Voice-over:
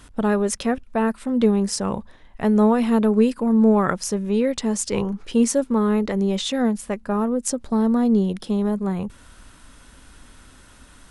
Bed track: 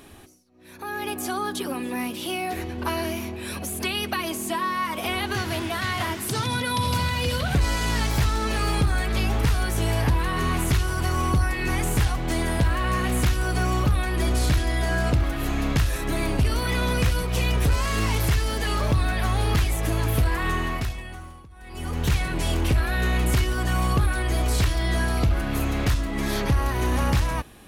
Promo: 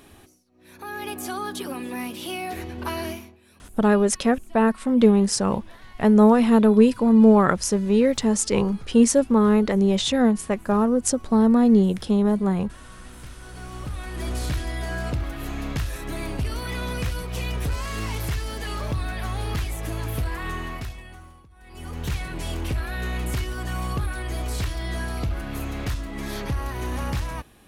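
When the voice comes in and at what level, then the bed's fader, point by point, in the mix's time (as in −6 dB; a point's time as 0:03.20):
3.60 s, +2.0 dB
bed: 0:03.11 −2.5 dB
0:03.41 −23.5 dB
0:13.07 −23.5 dB
0:14.32 −5.5 dB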